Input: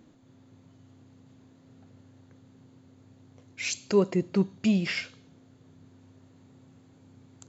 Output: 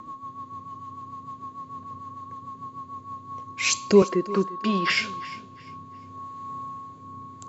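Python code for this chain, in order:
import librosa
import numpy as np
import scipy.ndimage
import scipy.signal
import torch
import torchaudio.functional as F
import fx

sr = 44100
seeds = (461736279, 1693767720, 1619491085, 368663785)

p1 = x + 10.0 ** (-41.0 / 20.0) * np.sin(2.0 * np.pi * 1100.0 * np.arange(len(x)) / sr)
p2 = fx.rotary_switch(p1, sr, hz=6.7, then_hz=0.7, switch_at_s=2.87)
p3 = fx.cabinet(p2, sr, low_hz=330.0, low_slope=12, high_hz=4800.0, hz=(640.0, 1100.0, 1600.0, 2400.0), db=(-5, 9, 8, -8), at=(4.02, 4.9))
p4 = p3 + fx.echo_feedback(p3, sr, ms=350, feedback_pct=29, wet_db=-18.0, dry=0)
y = p4 * librosa.db_to_amplitude(8.5)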